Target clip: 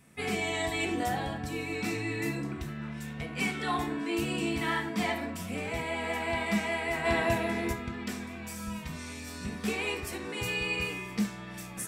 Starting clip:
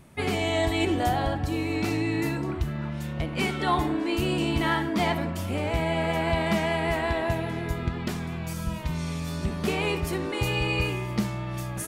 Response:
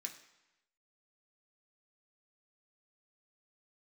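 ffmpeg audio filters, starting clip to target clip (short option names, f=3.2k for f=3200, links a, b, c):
-filter_complex "[0:a]asplit=3[a][b][c];[a]afade=t=out:st=7.04:d=0.02[d];[b]acontrast=54,afade=t=in:st=7.04:d=0.02,afade=t=out:st=7.72:d=0.02[e];[c]afade=t=in:st=7.72:d=0.02[f];[d][e][f]amix=inputs=3:normalize=0[g];[1:a]atrim=start_sample=2205,atrim=end_sample=3969[h];[g][h]afir=irnorm=-1:irlink=0"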